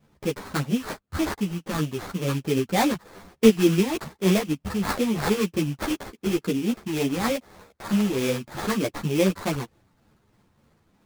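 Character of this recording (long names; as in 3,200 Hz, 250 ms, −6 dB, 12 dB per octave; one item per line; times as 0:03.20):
phaser sweep stages 8, 3.3 Hz, lowest notch 540–2,900 Hz
aliases and images of a low sample rate 2,900 Hz, jitter 20%
a shimmering, thickened sound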